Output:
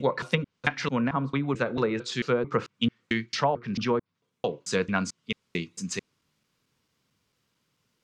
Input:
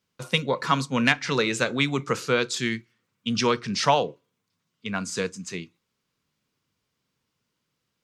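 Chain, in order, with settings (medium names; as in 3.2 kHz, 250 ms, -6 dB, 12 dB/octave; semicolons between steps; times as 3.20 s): slices played last to first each 222 ms, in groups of 3; low-pass that closes with the level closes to 850 Hz, closed at -18 dBFS; gain riding within 4 dB 0.5 s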